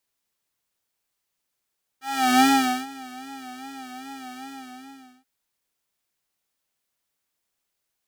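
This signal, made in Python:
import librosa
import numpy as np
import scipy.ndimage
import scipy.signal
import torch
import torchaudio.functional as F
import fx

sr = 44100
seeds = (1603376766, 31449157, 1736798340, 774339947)

y = fx.sub_patch_vibrato(sr, seeds[0], note=60, wave='square', wave2='saw', interval_st=19, detune_cents=16, level2_db=-8, sub_db=-17.0, noise_db=-28.0, kind='highpass', cutoff_hz=320.0, q=1.4, env_oct=1.5, env_decay_s=0.31, env_sustain_pct=25, attack_ms=392.0, decay_s=0.46, sustain_db=-22.5, release_s=0.8, note_s=2.43, lfo_hz=2.5, vibrato_cents=73)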